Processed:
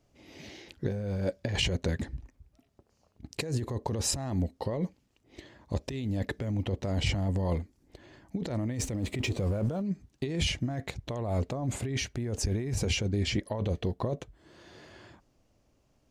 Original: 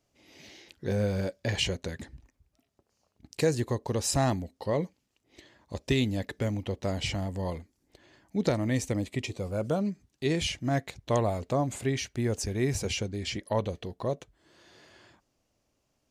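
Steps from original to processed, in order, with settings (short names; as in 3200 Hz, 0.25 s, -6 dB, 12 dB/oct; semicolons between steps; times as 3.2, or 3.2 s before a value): 8.73–9.82 G.711 law mismatch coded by mu; tilt -1.5 dB/oct; negative-ratio compressor -30 dBFS, ratio -1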